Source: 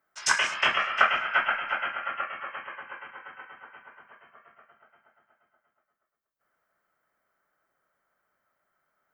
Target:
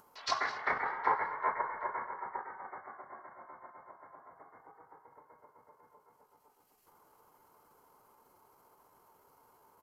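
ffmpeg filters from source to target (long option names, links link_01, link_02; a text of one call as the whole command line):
ffmpeg -i in.wav -af "asetrate=30296,aresample=44100,atempo=1.45565,acompressor=mode=upward:threshold=-39dB:ratio=2.5,bandreject=frequency=3600:width=7.5,atempo=0.93,aecho=1:1:211:0.112,volume=-8dB" out.wav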